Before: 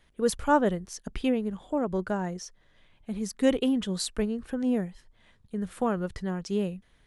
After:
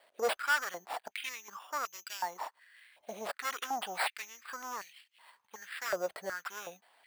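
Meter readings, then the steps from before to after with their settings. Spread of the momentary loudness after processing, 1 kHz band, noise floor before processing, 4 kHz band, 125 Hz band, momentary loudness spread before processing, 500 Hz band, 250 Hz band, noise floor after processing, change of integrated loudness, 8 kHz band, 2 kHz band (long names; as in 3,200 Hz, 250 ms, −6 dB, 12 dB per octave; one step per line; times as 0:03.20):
14 LU, −3.5 dB, −64 dBFS, −2.5 dB, below −25 dB, 14 LU, −10.5 dB, −27.5 dB, −77 dBFS, −8.0 dB, −4.0 dB, +4.0 dB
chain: decimation without filtering 7×
soft clipping −27 dBFS, distortion −8 dB
high-pass on a step sequencer 2.7 Hz 630–2,700 Hz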